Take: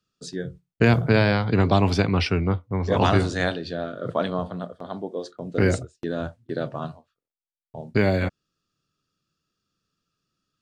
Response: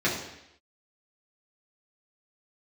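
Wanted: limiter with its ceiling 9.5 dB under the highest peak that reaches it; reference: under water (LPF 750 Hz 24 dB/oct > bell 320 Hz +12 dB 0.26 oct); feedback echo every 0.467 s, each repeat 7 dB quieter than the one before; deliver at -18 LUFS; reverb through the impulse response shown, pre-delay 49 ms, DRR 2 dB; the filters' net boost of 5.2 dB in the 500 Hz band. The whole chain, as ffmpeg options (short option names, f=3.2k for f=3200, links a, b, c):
-filter_complex "[0:a]equalizer=f=500:t=o:g=5,alimiter=limit=-11.5dB:level=0:latency=1,aecho=1:1:467|934|1401|1868|2335:0.447|0.201|0.0905|0.0407|0.0183,asplit=2[a][b];[1:a]atrim=start_sample=2205,adelay=49[c];[b][c]afir=irnorm=-1:irlink=0,volume=-15.5dB[d];[a][d]amix=inputs=2:normalize=0,lowpass=f=750:w=0.5412,lowpass=f=750:w=1.3066,equalizer=f=320:t=o:w=0.26:g=12,volume=1.5dB"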